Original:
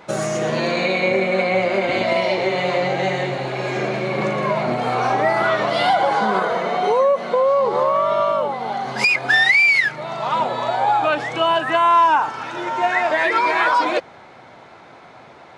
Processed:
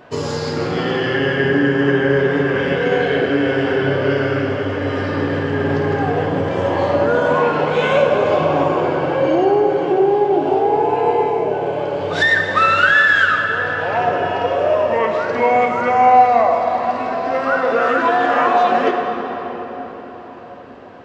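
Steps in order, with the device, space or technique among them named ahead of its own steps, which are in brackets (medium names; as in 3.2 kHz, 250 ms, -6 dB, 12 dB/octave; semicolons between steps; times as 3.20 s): slowed and reverbed (tape speed -26%; reverberation RT60 4.9 s, pre-delay 3 ms, DRR 2 dB)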